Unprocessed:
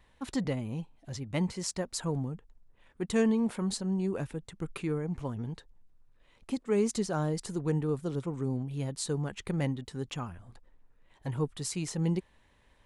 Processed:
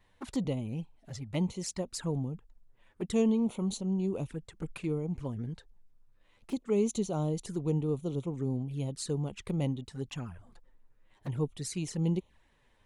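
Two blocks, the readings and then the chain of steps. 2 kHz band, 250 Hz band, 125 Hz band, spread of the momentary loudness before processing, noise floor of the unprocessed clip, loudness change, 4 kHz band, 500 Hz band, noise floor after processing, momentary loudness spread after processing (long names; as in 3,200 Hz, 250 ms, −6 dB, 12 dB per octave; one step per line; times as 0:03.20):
−7.0 dB, −0.5 dB, 0.0 dB, 11 LU, −65 dBFS, −0.5 dB, −3.0 dB, −1.0 dB, −68 dBFS, 12 LU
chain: flanger swept by the level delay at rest 11.6 ms, full sweep at −30.5 dBFS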